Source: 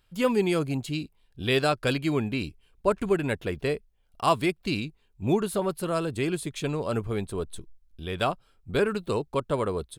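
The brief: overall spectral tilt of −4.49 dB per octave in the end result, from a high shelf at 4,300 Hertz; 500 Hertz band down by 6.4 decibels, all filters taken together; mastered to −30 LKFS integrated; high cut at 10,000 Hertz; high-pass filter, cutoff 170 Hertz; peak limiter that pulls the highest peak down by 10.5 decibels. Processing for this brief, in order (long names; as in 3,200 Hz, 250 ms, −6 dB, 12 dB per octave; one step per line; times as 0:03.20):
high-pass filter 170 Hz
low-pass filter 10,000 Hz
parametric band 500 Hz −8.5 dB
high-shelf EQ 4,300 Hz +4.5 dB
level +4 dB
brickwall limiter −17 dBFS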